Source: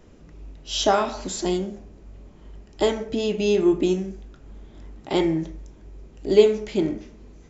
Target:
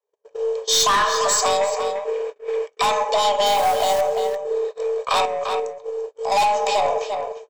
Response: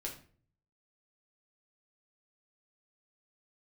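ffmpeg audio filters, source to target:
-filter_complex "[0:a]bass=f=250:g=1,treble=f=4k:g=4,aecho=1:1:1.5:0.56,afreqshift=400,asettb=1/sr,asplit=3[a][b][c];[a]atrim=end=3.464[d];[b]atrim=start=3.46:end=4.01,asetpts=PTS-STARTPTS,afade=t=in:d=0.004:c=qsin,afade=t=out:st=0.546:d=0.004:c=qsin,acrusher=bits=2:mode=log:mix=0:aa=0.000001[e];[c]atrim=start=4.006[f];[d][e]acrossfade=d=0.004:c1=hsin:c2=qsin[g];[g][f]acrossfade=d=0.004:c1=qsin:c2=hsin,aeval=exprs='0.631*(cos(1*acos(clip(val(0)/0.631,-1,1)))-cos(1*PI/2))+0.0794*(cos(4*acos(clip(val(0)/0.631,-1,1)))-cos(4*PI/2))':c=same,asoftclip=type=tanh:threshold=-20.5dB,asettb=1/sr,asplit=3[h][i][j];[h]atrim=end=5.254[k];[i]atrim=start=5.25:end=6.32,asetpts=PTS-STARTPTS,afade=t=in:d=0.004:c=qsin,afade=t=out:st=1.066:d=0.004:c=qsin,acompressor=threshold=-36dB:ratio=4[l];[j]atrim=start=6.316[m];[k][l]acrossfade=d=0.004:c1=hsin:c2=qsin[n];[n][m]acrossfade=d=0.004:c1=qsin:c2=hsin,agate=range=-49dB:threshold=-39dB:ratio=16:detection=peak,asettb=1/sr,asplit=3[o][p][q];[o]atrim=end=1.614[r];[p]atrim=start=1.61:end=2.82,asetpts=PTS-STARTPTS,afade=t=in:d=0.004:c=qsin,afade=t=out:st=1.206:d=0.004:c=qsin,equalizer=f=2.2k:t=o:w=1:g=11[s];[q]atrim=start=2.816[t];[r][s]acrossfade=d=0.004:c1=hsin:c2=qsin[u];[u][t]acrossfade=d=0.004:c1=qsin:c2=hsin,asplit=2[v][w];[w]adelay=344,volume=-10dB,highshelf=f=4k:g=-7.74[x];[v][x]amix=inputs=2:normalize=0,acrossover=split=160[y][z];[z]acompressor=threshold=-29dB:ratio=3[aa];[y][aa]amix=inputs=2:normalize=0,alimiter=level_in=21dB:limit=-1dB:release=50:level=0:latency=1,volume=-8.5dB"

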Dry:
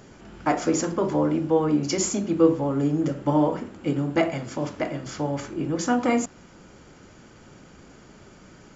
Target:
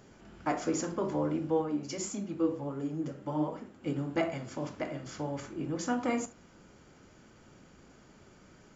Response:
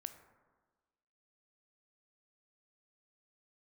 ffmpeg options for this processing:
-filter_complex "[0:a]asplit=3[a][b][c];[a]afade=t=out:st=1.61:d=0.02[d];[b]flanger=delay=3.5:depth=7:regen=41:speed=1.4:shape=triangular,afade=t=in:st=1.61:d=0.02,afade=t=out:st=3.82:d=0.02[e];[c]afade=t=in:st=3.82:d=0.02[f];[d][e][f]amix=inputs=3:normalize=0[g];[1:a]atrim=start_sample=2205,atrim=end_sample=3528[h];[g][h]afir=irnorm=-1:irlink=0,volume=-4dB"

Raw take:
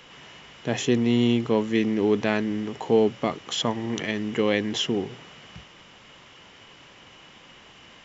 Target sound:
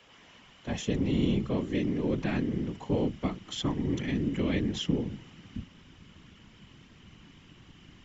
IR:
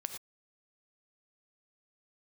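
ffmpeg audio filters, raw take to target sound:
-af "asubboost=boost=9.5:cutoff=170,afreqshift=31,afftfilt=real='hypot(re,im)*cos(2*PI*random(0))':imag='hypot(re,im)*sin(2*PI*random(1))':win_size=512:overlap=0.75,volume=-3dB"

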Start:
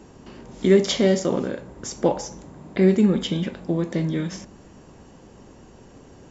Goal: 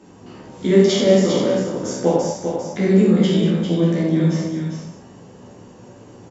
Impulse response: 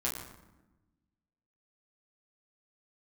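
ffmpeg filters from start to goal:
-filter_complex "[0:a]highpass=99,aecho=1:1:399:0.473[a];[1:a]atrim=start_sample=2205,atrim=end_sample=6174,asetrate=24696,aresample=44100[b];[a][b]afir=irnorm=-1:irlink=0,volume=-5dB"

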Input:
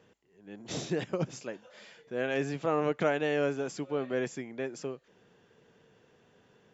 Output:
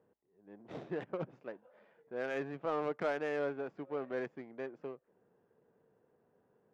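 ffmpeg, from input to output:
-filter_complex "[0:a]adynamicsmooth=sensitivity=4.5:basefreq=850,asplit=2[a][b];[b]highpass=f=720:p=1,volume=12dB,asoftclip=type=tanh:threshold=-14dB[c];[a][c]amix=inputs=2:normalize=0,lowpass=f=1.9k:p=1,volume=-6dB,volume=-8dB"

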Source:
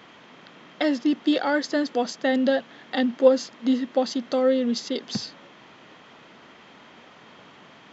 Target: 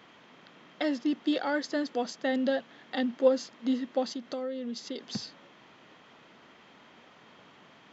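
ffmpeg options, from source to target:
-filter_complex "[0:a]asplit=3[a][b][c];[a]afade=t=out:st=4.12:d=0.02[d];[b]acompressor=threshold=-27dB:ratio=4,afade=t=in:st=4.12:d=0.02,afade=t=out:st=4.98:d=0.02[e];[c]afade=t=in:st=4.98:d=0.02[f];[d][e][f]amix=inputs=3:normalize=0,volume=-6.5dB"

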